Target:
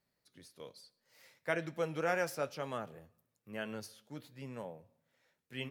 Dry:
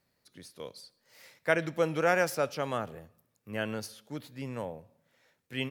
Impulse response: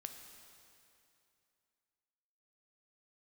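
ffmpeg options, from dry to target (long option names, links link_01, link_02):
-af "flanger=delay=4.7:depth=3.3:regen=-66:speed=1.1:shape=sinusoidal,volume=-3dB"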